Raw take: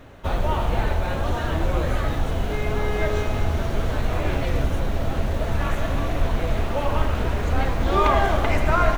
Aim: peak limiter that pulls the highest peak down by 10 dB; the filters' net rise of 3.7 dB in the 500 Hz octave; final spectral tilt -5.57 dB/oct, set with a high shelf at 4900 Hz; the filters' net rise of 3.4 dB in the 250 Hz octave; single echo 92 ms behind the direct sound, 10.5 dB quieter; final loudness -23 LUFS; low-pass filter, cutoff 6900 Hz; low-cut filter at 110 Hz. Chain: HPF 110 Hz; LPF 6900 Hz; bell 250 Hz +3.5 dB; bell 500 Hz +4 dB; high shelf 4900 Hz -5.5 dB; limiter -15.5 dBFS; echo 92 ms -10.5 dB; gain +2.5 dB

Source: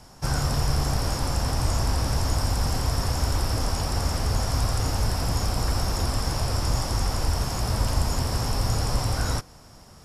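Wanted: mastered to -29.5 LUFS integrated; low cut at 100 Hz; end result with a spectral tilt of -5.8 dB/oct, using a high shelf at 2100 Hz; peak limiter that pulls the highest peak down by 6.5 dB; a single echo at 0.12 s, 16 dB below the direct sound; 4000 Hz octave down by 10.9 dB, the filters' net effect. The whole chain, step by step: HPF 100 Hz; high shelf 2100 Hz -7.5 dB; bell 4000 Hz -7 dB; limiter -23 dBFS; echo 0.12 s -16 dB; gain +3 dB

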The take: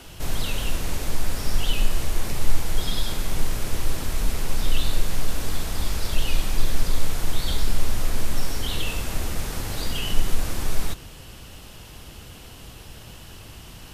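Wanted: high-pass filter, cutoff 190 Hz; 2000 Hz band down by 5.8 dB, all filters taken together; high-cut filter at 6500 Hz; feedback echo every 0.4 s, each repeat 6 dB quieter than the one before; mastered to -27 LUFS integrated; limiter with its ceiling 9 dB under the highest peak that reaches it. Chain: HPF 190 Hz; LPF 6500 Hz; bell 2000 Hz -8 dB; limiter -30 dBFS; feedback echo 0.4 s, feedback 50%, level -6 dB; gain +11 dB

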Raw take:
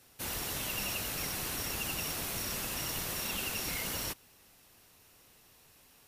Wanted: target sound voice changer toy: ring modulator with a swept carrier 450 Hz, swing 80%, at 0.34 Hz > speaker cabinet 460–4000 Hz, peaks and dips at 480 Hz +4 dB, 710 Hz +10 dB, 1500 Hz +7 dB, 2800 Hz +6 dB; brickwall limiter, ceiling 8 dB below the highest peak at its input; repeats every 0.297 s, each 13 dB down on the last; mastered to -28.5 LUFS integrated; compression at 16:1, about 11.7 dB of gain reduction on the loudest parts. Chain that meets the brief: compressor 16:1, threshold -44 dBFS; limiter -40 dBFS; feedback echo 0.297 s, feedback 22%, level -13 dB; ring modulator with a swept carrier 450 Hz, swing 80%, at 0.34 Hz; speaker cabinet 460–4000 Hz, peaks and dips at 480 Hz +4 dB, 710 Hz +10 dB, 1500 Hz +7 dB, 2800 Hz +6 dB; gain +24 dB

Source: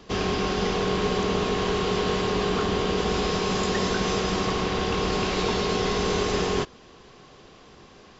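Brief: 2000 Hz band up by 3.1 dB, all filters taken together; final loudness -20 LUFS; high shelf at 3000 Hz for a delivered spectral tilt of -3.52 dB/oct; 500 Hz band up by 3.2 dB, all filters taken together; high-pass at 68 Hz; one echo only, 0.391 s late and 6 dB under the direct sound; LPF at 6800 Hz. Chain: HPF 68 Hz; LPF 6800 Hz; bell 500 Hz +4 dB; bell 2000 Hz +5.5 dB; high shelf 3000 Hz -4.5 dB; echo 0.391 s -6 dB; gain +2.5 dB

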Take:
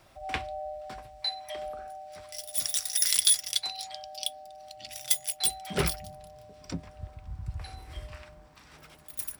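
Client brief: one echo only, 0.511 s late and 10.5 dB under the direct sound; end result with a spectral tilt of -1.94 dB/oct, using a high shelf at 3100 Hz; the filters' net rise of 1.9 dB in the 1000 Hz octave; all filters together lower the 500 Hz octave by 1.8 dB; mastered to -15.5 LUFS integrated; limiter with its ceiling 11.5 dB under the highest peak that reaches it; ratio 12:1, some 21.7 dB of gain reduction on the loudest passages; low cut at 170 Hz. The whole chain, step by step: HPF 170 Hz; bell 500 Hz -4 dB; bell 1000 Hz +4.5 dB; high shelf 3100 Hz +7 dB; compressor 12:1, threshold -34 dBFS; limiter -27.5 dBFS; echo 0.511 s -10.5 dB; gain +26 dB

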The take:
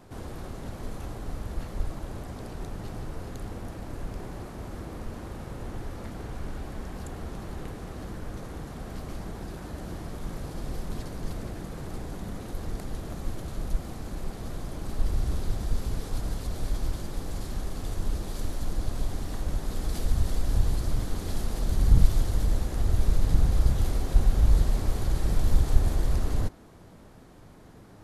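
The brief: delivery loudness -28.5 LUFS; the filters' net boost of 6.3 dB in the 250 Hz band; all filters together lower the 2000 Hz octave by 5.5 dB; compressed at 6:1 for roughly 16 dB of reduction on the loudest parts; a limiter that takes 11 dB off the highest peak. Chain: bell 250 Hz +8.5 dB; bell 2000 Hz -7.5 dB; compressor 6:1, threshold -28 dBFS; gain +12 dB; limiter -18 dBFS

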